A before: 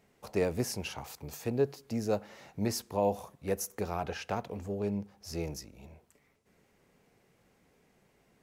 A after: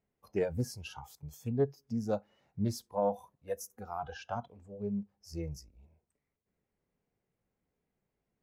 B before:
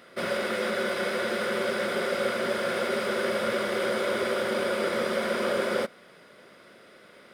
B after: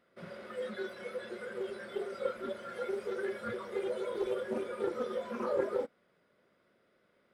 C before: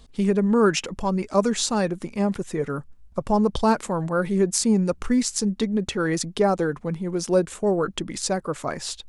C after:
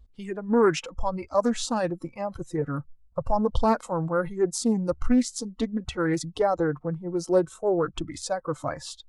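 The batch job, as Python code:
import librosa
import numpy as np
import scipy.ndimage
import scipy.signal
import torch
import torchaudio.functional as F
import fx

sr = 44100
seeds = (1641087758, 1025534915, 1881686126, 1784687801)

y = fx.high_shelf(x, sr, hz=2500.0, db=-7.5)
y = fx.noise_reduce_blind(y, sr, reduce_db=17)
y = fx.low_shelf(y, sr, hz=110.0, db=8.0)
y = fx.doppler_dist(y, sr, depth_ms=0.19)
y = y * 10.0 ** (-1.0 / 20.0)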